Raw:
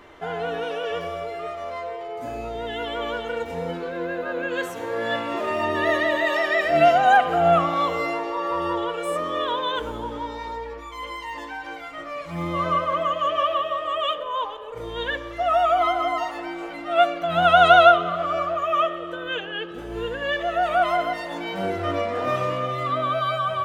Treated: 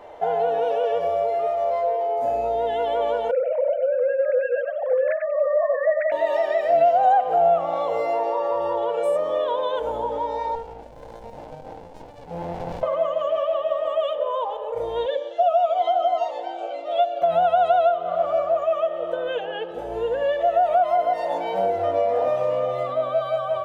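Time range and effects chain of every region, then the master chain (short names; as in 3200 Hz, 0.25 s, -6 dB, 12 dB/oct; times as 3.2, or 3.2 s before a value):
3.31–6.12 sine-wave speech + echo 94 ms -6.5 dB
10.55–12.83 notch 1100 Hz, Q 15 + running maximum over 65 samples
15.06–17.22 speaker cabinet 450–7400 Hz, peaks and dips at 540 Hz +5 dB, 1000 Hz -8 dB, 1900 Hz -8 dB, 3300 Hz +7 dB, 5200 Hz -3 dB + cascading phaser falling 1.7 Hz
whole clip: compressor 4:1, threshold -27 dBFS; band shelf 650 Hz +15 dB 1.2 oct; gain -4 dB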